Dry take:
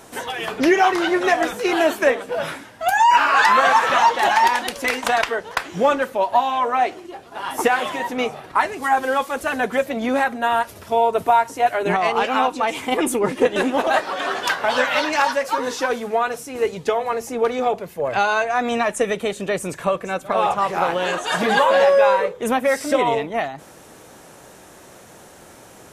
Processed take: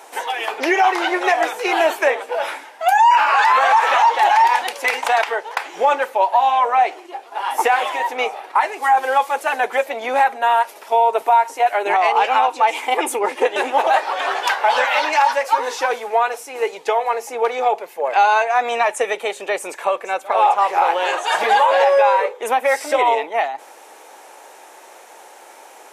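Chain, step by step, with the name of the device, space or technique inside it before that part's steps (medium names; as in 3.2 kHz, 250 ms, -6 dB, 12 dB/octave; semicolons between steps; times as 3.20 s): laptop speaker (high-pass 380 Hz 24 dB/octave; peaking EQ 850 Hz +10 dB 0.37 oct; peaking EQ 2.3 kHz +5 dB 0.6 oct; peak limiter -6 dBFS, peak gain reduction 9 dB)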